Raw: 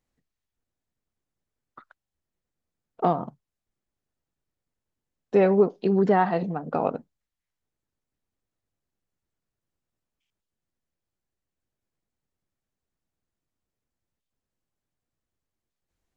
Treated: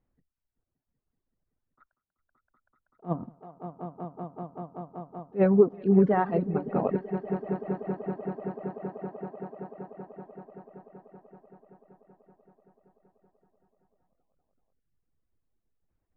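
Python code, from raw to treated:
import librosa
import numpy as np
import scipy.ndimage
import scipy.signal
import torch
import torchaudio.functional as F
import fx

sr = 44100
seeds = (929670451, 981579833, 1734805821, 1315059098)

y = scipy.signal.sosfilt(scipy.signal.butter(2, 1700.0, 'lowpass', fs=sr, output='sos'), x)
y = fx.low_shelf(y, sr, hz=470.0, db=6.0)
y = fx.echo_swell(y, sr, ms=191, loudest=5, wet_db=-15)
y = fx.dereverb_blind(y, sr, rt60_s=1.2)
y = fx.dynamic_eq(y, sr, hz=790.0, q=0.9, threshold_db=-37.0, ratio=4.0, max_db=-6)
y = fx.attack_slew(y, sr, db_per_s=340.0)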